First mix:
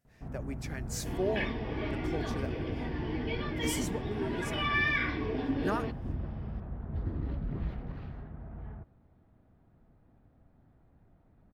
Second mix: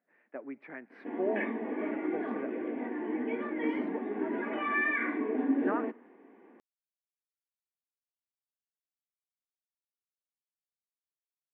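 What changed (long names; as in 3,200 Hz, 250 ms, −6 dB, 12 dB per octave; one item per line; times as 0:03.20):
first sound: muted
second sound: add low-shelf EQ 420 Hz +6.5 dB
master: add elliptic band-pass filter 240–2,100 Hz, stop band 50 dB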